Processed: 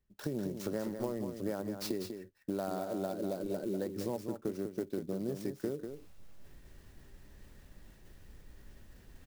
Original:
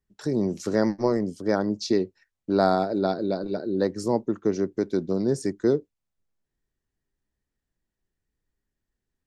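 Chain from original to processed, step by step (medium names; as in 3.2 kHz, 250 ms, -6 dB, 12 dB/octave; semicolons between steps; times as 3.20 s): small resonant body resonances 570/2700 Hz, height 6 dB; reverse; upward compressor, threshold -29 dBFS; reverse; bass shelf 150 Hz +4.5 dB; compression 10:1, threshold -28 dBFS, peak gain reduction 15 dB; on a send: delay 195 ms -7.5 dB; on the sum: sampling jitter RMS 0.029 ms; trim -4.5 dB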